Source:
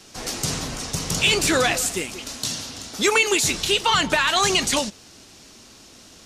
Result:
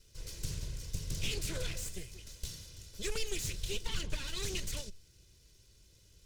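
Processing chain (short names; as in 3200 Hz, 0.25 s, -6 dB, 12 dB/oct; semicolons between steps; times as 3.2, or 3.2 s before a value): minimum comb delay 2 ms; passive tone stack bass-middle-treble 10-0-1; Doppler distortion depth 0.43 ms; gain +5 dB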